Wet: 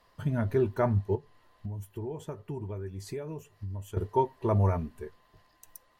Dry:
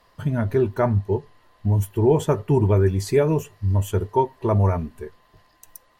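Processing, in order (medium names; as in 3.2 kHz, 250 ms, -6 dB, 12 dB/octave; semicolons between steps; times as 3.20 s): 1.15–3.97 s: compression 4:1, threshold -31 dBFS, peak gain reduction 15.5 dB; trim -6 dB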